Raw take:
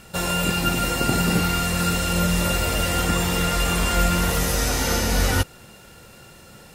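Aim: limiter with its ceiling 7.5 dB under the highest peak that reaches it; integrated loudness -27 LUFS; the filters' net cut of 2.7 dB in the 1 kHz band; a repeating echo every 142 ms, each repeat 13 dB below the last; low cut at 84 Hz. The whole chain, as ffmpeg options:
-af "highpass=84,equalizer=f=1000:t=o:g=-4.5,alimiter=limit=0.168:level=0:latency=1,aecho=1:1:142|284|426:0.224|0.0493|0.0108,volume=0.75"

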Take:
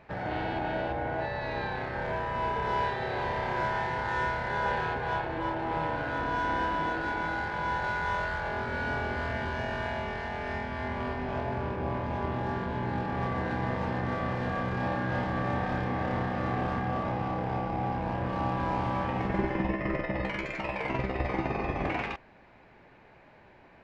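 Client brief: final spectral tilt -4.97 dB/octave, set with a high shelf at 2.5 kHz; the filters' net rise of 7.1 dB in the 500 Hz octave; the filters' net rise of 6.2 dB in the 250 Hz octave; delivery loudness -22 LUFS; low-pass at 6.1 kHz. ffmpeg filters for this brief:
-af "lowpass=6100,equalizer=f=250:t=o:g=6,equalizer=f=500:t=o:g=7,highshelf=f=2500:g=7.5,volume=1.78"

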